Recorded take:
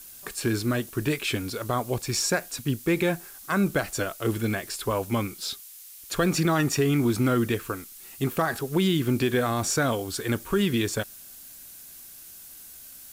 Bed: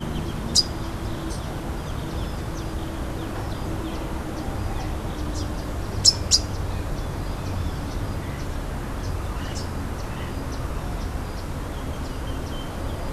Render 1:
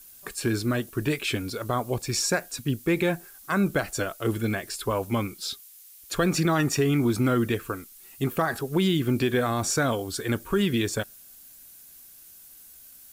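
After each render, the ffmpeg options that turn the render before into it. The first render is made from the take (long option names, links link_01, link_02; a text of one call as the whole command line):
ffmpeg -i in.wav -af "afftdn=noise_reduction=6:noise_floor=-46" out.wav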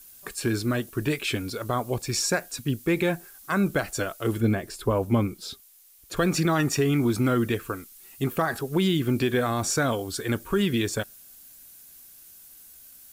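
ffmpeg -i in.wav -filter_complex "[0:a]asettb=1/sr,asplit=3[link_01][link_02][link_03];[link_01]atrim=end=4.404[link_04];[link_02]atrim=start=4.4:end=6.17,asetpts=PTS-STARTPTS,afade=type=in:duration=0.004:curve=qsin,afade=type=out:start_time=1.766:duration=0.004:curve=qsin,tiltshelf=frequency=910:gain=5.5[link_05];[link_03]atrim=start=6.166[link_06];[link_04][link_05]acrossfade=duration=0.004:curve1=hsin:curve2=qsin[link_07];[link_07][link_06]acrossfade=duration=0.004:curve1=qsin:curve2=hsin" out.wav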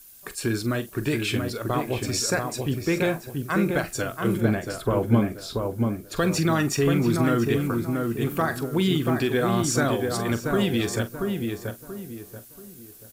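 ffmpeg -i in.wav -filter_complex "[0:a]asplit=2[link_01][link_02];[link_02]adelay=43,volume=-13dB[link_03];[link_01][link_03]amix=inputs=2:normalize=0,asplit=2[link_04][link_05];[link_05]adelay=683,lowpass=frequency=1600:poles=1,volume=-3.5dB,asplit=2[link_06][link_07];[link_07]adelay=683,lowpass=frequency=1600:poles=1,volume=0.35,asplit=2[link_08][link_09];[link_09]adelay=683,lowpass=frequency=1600:poles=1,volume=0.35,asplit=2[link_10][link_11];[link_11]adelay=683,lowpass=frequency=1600:poles=1,volume=0.35,asplit=2[link_12][link_13];[link_13]adelay=683,lowpass=frequency=1600:poles=1,volume=0.35[link_14];[link_06][link_08][link_10][link_12][link_14]amix=inputs=5:normalize=0[link_15];[link_04][link_15]amix=inputs=2:normalize=0" out.wav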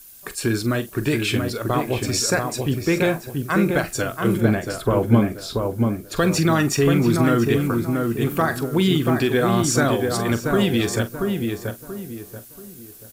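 ffmpeg -i in.wav -af "volume=4dB" out.wav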